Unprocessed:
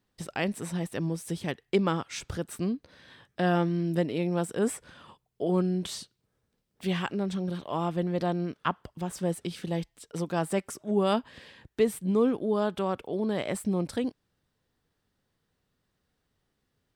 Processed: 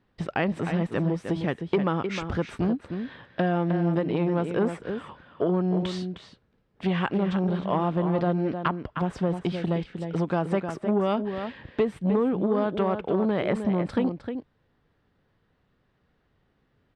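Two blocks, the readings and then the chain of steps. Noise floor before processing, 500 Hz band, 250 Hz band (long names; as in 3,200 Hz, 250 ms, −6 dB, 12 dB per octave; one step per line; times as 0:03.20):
−79 dBFS, +3.0 dB, +4.0 dB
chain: low-pass filter 2,600 Hz 12 dB per octave
downward compressor, threshold −28 dBFS, peak gain reduction 9.5 dB
slap from a distant wall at 53 metres, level −8 dB
saturating transformer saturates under 450 Hz
level +8.5 dB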